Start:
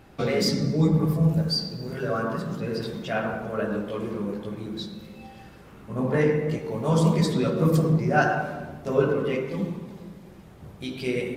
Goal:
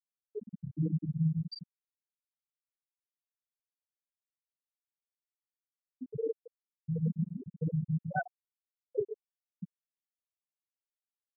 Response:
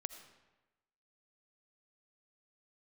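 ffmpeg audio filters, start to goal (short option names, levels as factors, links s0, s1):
-filter_complex "[0:a]asplit=2[s0][s1];[s1]adelay=358,lowpass=f=810:p=1,volume=0.224,asplit=2[s2][s3];[s3]adelay=358,lowpass=f=810:p=1,volume=0.46,asplit=2[s4][s5];[s5]adelay=358,lowpass=f=810:p=1,volume=0.46,asplit=2[s6][s7];[s7]adelay=358,lowpass=f=810:p=1,volume=0.46,asplit=2[s8][s9];[s9]adelay=358,lowpass=f=810:p=1,volume=0.46[s10];[s0][s2][s4][s6][s8][s10]amix=inputs=6:normalize=0,afftfilt=real='re*gte(hypot(re,im),0.708)':imag='im*gte(hypot(re,im),0.708)':win_size=1024:overlap=0.75,volume=0.355"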